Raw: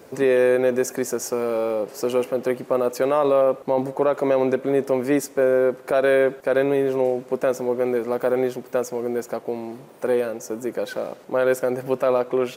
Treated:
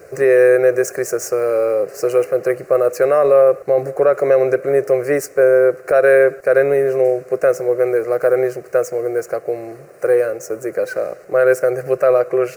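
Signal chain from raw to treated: median filter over 3 samples; static phaser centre 920 Hz, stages 6; trim +7.5 dB

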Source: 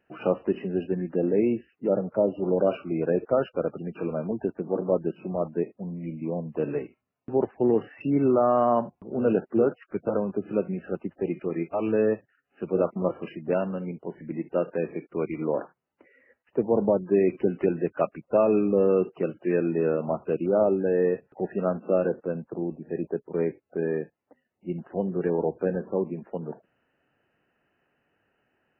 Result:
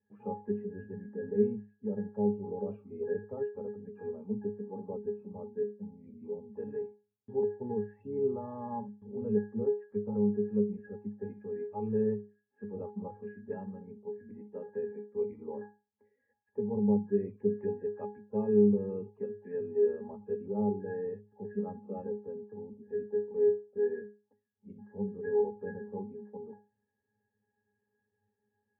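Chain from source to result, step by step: pitch-class resonator G#, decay 0.32 s; trim +5.5 dB

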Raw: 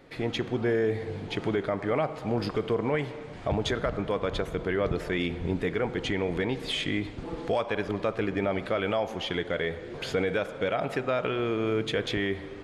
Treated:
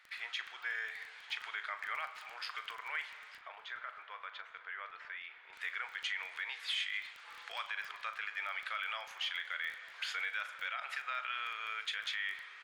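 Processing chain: high-pass 1.4 kHz 24 dB/octave; treble shelf 3.4 kHz -10 dB; peak limiter -30 dBFS, peak gain reduction 6.5 dB; crackle 15 per s -43 dBFS; 3.37–5.53 s: tape spacing loss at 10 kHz 31 dB; doubling 38 ms -12.5 dB; delay 891 ms -21 dB; trim +3 dB

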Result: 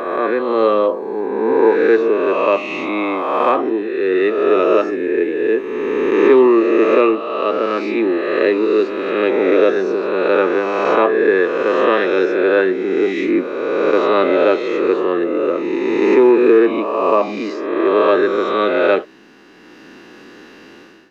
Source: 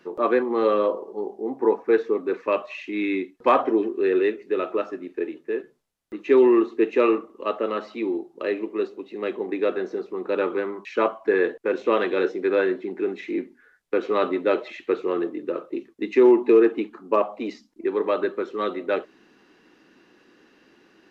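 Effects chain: reverse spectral sustain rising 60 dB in 1.81 s; level rider gain up to 14 dB; trim -1 dB

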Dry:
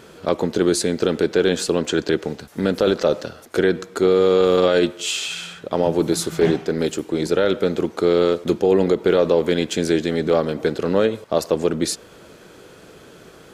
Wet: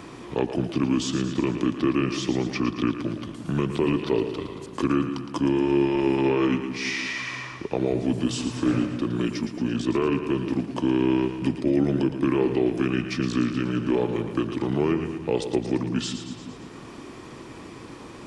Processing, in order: speed mistake 45 rpm record played at 33 rpm; two-band feedback delay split 310 Hz, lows 170 ms, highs 113 ms, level -9.5 dB; three bands compressed up and down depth 40%; trim -6 dB

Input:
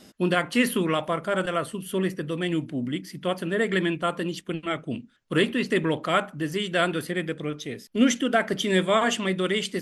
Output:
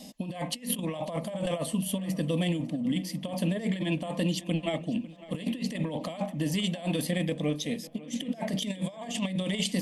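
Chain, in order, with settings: static phaser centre 380 Hz, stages 6; compressor with a negative ratio -32 dBFS, ratio -0.5; harmonic-percussive split harmonic +3 dB; on a send: tape echo 548 ms, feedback 54%, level -17 dB, low-pass 4.5 kHz

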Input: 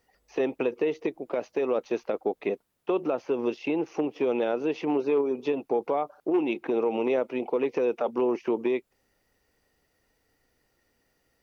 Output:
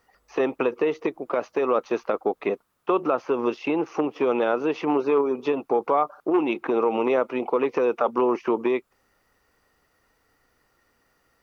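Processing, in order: peaking EQ 1.2 kHz +11 dB 0.78 oct; trim +2.5 dB

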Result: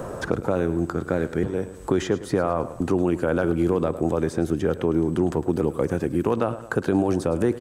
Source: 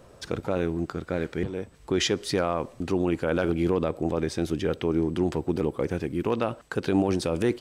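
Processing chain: high-order bell 3.3 kHz -8.5 dB; on a send: feedback delay 106 ms, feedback 37%, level -15.5 dB; on the sum: three bands compressed up and down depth 70%; trim +3 dB

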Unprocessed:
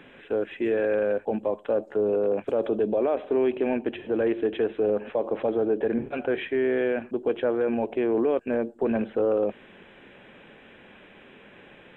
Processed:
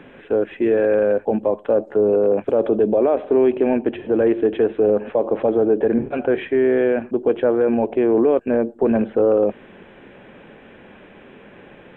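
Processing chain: treble shelf 2.1 kHz -11 dB; trim +8 dB

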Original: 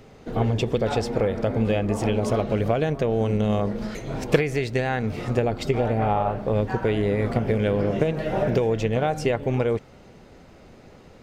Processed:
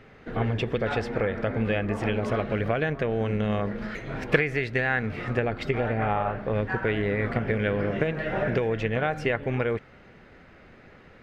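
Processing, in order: FFT filter 910 Hz 0 dB, 1.7 kHz +11 dB, 7 kHz -10 dB; trim -4 dB

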